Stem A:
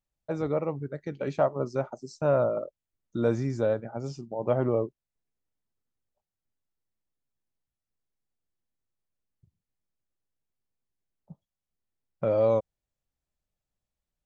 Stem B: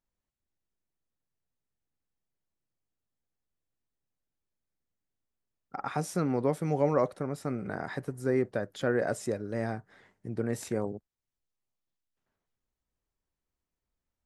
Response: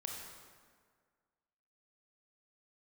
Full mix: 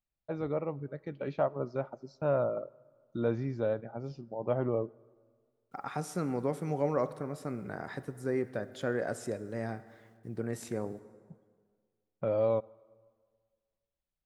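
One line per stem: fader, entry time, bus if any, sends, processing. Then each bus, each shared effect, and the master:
-5.5 dB, 0.00 s, send -20.5 dB, low-pass 4.4 kHz 24 dB/octave
-6.0 dB, 0.00 s, send -8.5 dB, word length cut 12-bit, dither none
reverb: on, RT60 1.8 s, pre-delay 22 ms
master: none

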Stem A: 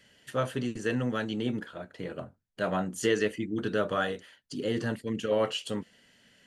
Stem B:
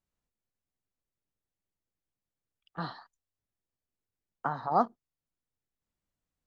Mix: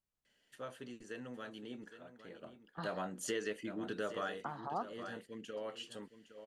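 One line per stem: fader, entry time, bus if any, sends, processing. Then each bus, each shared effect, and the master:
2.37 s -14 dB -> 2.78 s -2.5 dB -> 4.24 s -2.5 dB -> 4.63 s -12.5 dB, 0.25 s, no send, echo send -13 dB, peaking EQ 100 Hz -10.5 dB 1.7 oct
-5.5 dB, 0.00 s, no send, no echo send, none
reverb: none
echo: delay 813 ms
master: compression 2:1, threshold -41 dBFS, peak gain reduction 9.5 dB

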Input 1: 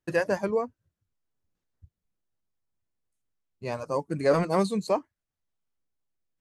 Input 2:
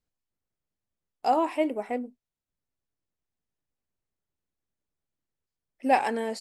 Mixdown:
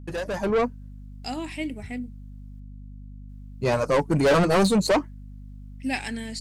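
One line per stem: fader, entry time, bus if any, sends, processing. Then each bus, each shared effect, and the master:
+1.5 dB, 0.00 s, muted 2.60–3.29 s, no send, saturation -29.5 dBFS, distortion -6 dB
-16.0 dB, 0.00 s, no send, ten-band graphic EQ 250 Hz +8 dB, 500 Hz -10 dB, 1 kHz -10 dB, 2 kHz +6 dB, 4 kHz +9 dB, 8 kHz +9 dB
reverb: none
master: level rider gain up to 12 dB; hum 50 Hz, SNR 15 dB

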